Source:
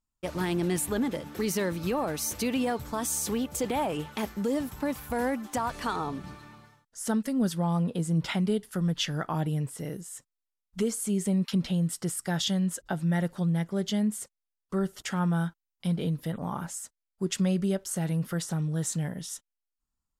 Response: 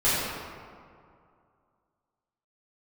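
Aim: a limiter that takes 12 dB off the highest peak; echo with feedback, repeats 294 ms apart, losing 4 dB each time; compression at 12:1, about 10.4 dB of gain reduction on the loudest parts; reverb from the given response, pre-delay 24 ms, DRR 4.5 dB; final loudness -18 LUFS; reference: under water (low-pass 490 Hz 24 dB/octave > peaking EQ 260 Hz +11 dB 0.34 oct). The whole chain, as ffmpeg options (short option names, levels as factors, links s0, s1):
-filter_complex "[0:a]acompressor=threshold=0.0224:ratio=12,alimiter=level_in=2.51:limit=0.0631:level=0:latency=1,volume=0.398,aecho=1:1:294|588|882|1176|1470|1764|2058|2352|2646:0.631|0.398|0.25|0.158|0.0994|0.0626|0.0394|0.0249|0.0157,asplit=2[s0][s1];[1:a]atrim=start_sample=2205,adelay=24[s2];[s1][s2]afir=irnorm=-1:irlink=0,volume=0.1[s3];[s0][s3]amix=inputs=2:normalize=0,lowpass=f=490:w=0.5412,lowpass=f=490:w=1.3066,equalizer=f=260:t=o:w=0.34:g=11,volume=6.68"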